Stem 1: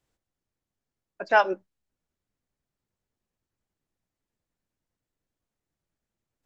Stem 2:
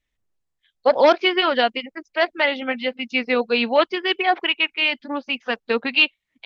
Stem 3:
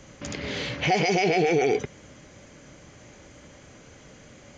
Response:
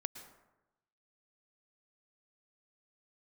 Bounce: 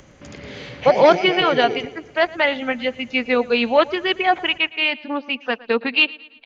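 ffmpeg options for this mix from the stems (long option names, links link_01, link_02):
-filter_complex "[0:a]volume=-19dB[link_01];[1:a]volume=2dB,asplit=2[link_02][link_03];[link_03]volume=-21dB[link_04];[2:a]acompressor=mode=upward:threshold=-39dB:ratio=2.5,volume=-3.5dB,asplit=2[link_05][link_06];[link_06]volume=-10dB[link_07];[link_04][link_07]amix=inputs=2:normalize=0,aecho=0:1:113|226|339|452|565|678|791:1|0.47|0.221|0.104|0.0488|0.0229|0.0108[link_08];[link_01][link_02][link_05][link_08]amix=inputs=4:normalize=0,highshelf=frequency=5300:gain=-9"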